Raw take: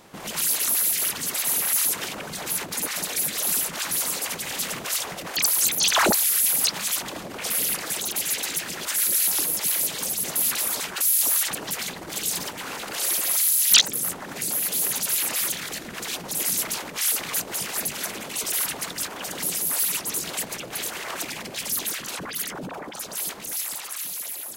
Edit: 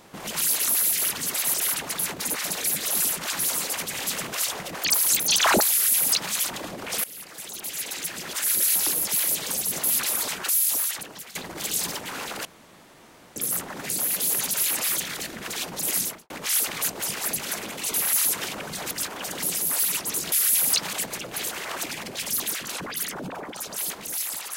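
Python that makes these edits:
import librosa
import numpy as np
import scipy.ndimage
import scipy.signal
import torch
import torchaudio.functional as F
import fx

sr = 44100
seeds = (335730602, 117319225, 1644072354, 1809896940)

y = fx.studio_fade_out(x, sr, start_s=16.5, length_s=0.32)
y = fx.edit(y, sr, fx.swap(start_s=1.54, length_s=0.97, other_s=18.46, other_length_s=0.45),
    fx.duplicate(start_s=6.23, length_s=0.61, to_s=20.32),
    fx.fade_in_from(start_s=7.56, length_s=1.59, floor_db=-19.5),
    fx.fade_out_to(start_s=10.96, length_s=0.91, floor_db=-16.0),
    fx.room_tone_fill(start_s=12.97, length_s=0.91), tone=tone)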